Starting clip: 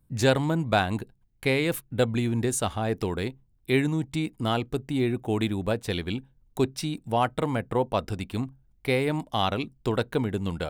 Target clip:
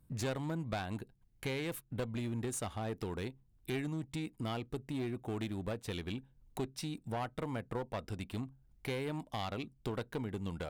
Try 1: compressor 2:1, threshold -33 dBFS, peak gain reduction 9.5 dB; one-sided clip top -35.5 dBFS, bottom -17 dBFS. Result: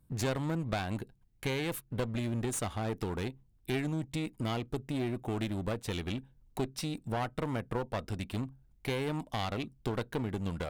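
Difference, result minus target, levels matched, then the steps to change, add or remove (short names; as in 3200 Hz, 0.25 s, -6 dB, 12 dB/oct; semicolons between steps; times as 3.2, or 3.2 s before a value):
compressor: peak gain reduction -5 dB
change: compressor 2:1, threshold -43.5 dBFS, peak gain reduction 15 dB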